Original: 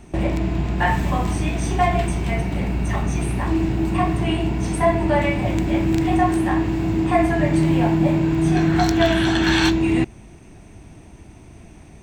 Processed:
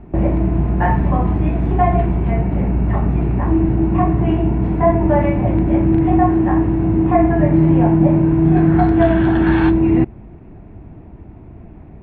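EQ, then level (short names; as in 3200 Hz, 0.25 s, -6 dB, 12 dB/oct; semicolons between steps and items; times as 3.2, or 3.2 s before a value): air absorption 390 m; high shelf 3000 Hz -8.5 dB; bell 7700 Hz -12 dB 2.8 oct; +6.0 dB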